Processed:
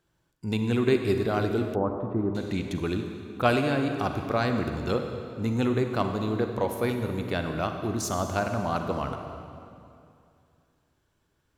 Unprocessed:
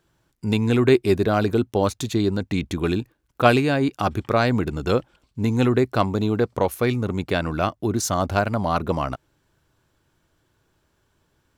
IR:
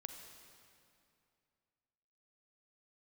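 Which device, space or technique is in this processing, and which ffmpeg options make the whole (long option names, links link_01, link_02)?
stairwell: -filter_complex "[1:a]atrim=start_sample=2205[link_01];[0:a][link_01]afir=irnorm=-1:irlink=0,asettb=1/sr,asplit=3[link_02][link_03][link_04];[link_02]atrim=end=1.754[link_05];[link_03]atrim=start=1.75:end=2.35,asetpts=PTS-STARTPTS,afade=type=in:duration=0.004:curve=qsin,afade=type=out:start_time=0.596:duration=0.004:curve=qsin,lowpass=frequency=1400:width=0.5412,lowpass=frequency=1400:width=1.3066[link_06];[link_04]atrim=start=2.346[link_07];[link_05][link_06]acrossfade=duration=0.004:curve1=hsin:curve2=qsin[link_08];[link_08][link_07]acrossfade=duration=0.004:curve1=qsin:curve2=hsin,volume=-2dB"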